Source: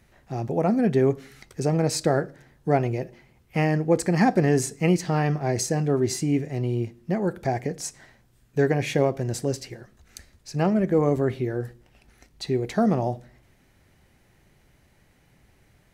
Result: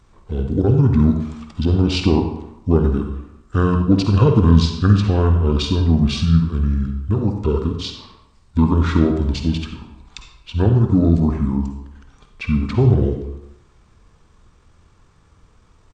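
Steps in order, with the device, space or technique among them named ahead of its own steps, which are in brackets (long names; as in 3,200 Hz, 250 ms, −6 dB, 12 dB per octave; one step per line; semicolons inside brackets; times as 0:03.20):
monster voice (pitch shifter −9.5 semitones; low-shelf EQ 120 Hz +4.5 dB; convolution reverb RT60 0.85 s, pre-delay 46 ms, DRR 4.5 dB)
level +4.5 dB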